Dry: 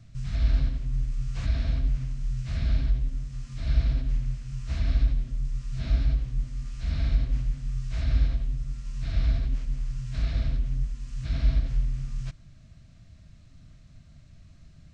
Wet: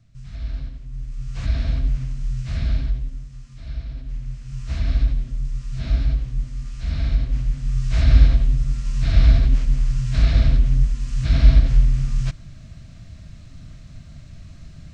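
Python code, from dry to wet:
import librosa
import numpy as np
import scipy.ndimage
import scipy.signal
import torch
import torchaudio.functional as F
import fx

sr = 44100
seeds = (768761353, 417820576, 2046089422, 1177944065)

y = fx.gain(x, sr, db=fx.line((0.88, -5.5), (1.5, 4.5), (2.6, 4.5), (3.86, -7.5), (4.6, 4.0), (7.31, 4.0), (7.97, 11.0)))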